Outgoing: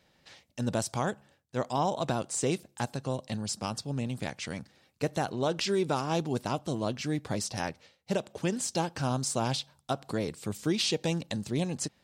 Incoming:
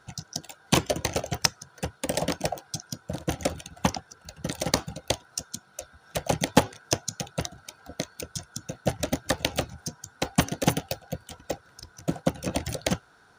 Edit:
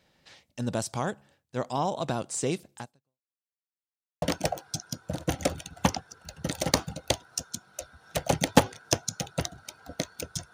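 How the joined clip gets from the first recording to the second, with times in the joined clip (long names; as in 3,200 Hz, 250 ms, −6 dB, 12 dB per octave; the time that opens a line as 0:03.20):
outgoing
0:02.77–0:03.39: fade out exponential
0:03.39–0:04.22: silence
0:04.22: continue with incoming from 0:02.22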